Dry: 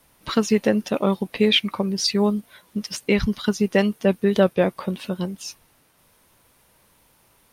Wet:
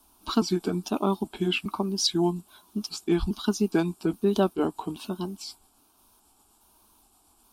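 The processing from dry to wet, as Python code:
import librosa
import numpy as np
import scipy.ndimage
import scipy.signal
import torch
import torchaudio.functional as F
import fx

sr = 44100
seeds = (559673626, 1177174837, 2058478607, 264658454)

y = fx.pitch_trill(x, sr, semitones=-3.0, every_ms=413)
y = fx.fixed_phaser(y, sr, hz=520.0, stages=6)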